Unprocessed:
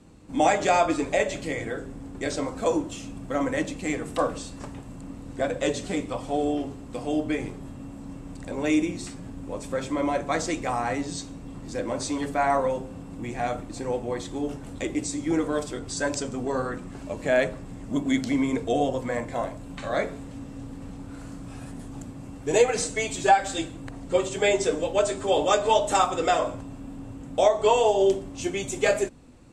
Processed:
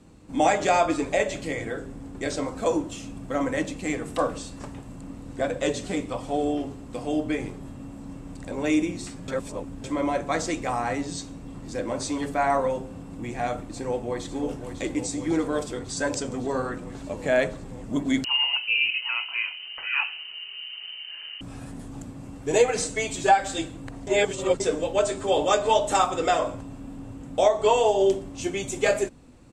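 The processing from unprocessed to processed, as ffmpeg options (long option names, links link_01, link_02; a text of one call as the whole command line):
ffmpeg -i in.wav -filter_complex "[0:a]asplit=2[link_01][link_02];[link_02]afade=type=in:start_time=13.6:duration=0.01,afade=type=out:start_time=14.36:duration=0.01,aecho=0:1:550|1100|1650|2200|2750|3300|3850|4400|4950|5500|6050|6600:0.334965|0.284721|0.242013|0.205711|0.174854|0.148626|0.126332|0.107382|0.0912749|0.0775837|0.0659461|0.0560542[link_03];[link_01][link_03]amix=inputs=2:normalize=0,asettb=1/sr,asplit=3[link_04][link_05][link_06];[link_04]atrim=end=18.244[link_07];[link_05]atrim=start=18.24:end=21.41,asetpts=PTS-STARTPTS,afade=type=in:duration=0.004:curve=qsin,afade=type=out:start_time=3.166:duration=0.004:curve=qsin,lowpass=frequency=2600:width_type=q:width=0.5098,lowpass=frequency=2600:width_type=q:width=0.6013,lowpass=frequency=2600:width_type=q:width=0.9,lowpass=frequency=2600:width_type=q:width=2.563,afreqshift=-3100[link_08];[link_06]atrim=start=21.406[link_09];[link_07][link_08]acrossfade=duration=0.004:curve1=hsin:curve2=qsin[link_10];[link_10][link_09]acrossfade=duration=0.004:curve1=qsin:curve2=hsin,asplit=5[link_11][link_12][link_13][link_14][link_15];[link_11]atrim=end=9.282[link_16];[link_12]atrim=start=9.278:end=9.842,asetpts=PTS-STARTPTS,areverse[link_17];[link_13]atrim=start=9.838:end=24.072[link_18];[link_14]atrim=start=24.068:end=24.602,asetpts=PTS-STARTPTS,areverse[link_19];[link_15]atrim=start=24.598[link_20];[link_16][link_17]acrossfade=duration=0.004:curve1=hsin:curve2=hsin[link_21];[link_21][link_18]acrossfade=duration=0.004:curve1=hsin:curve2=hsin[link_22];[link_22][link_19]acrossfade=duration=0.004:curve1=hsin:curve2=hsin[link_23];[link_23][link_20]acrossfade=duration=0.004:curve1=hsin:curve2=hsin" out.wav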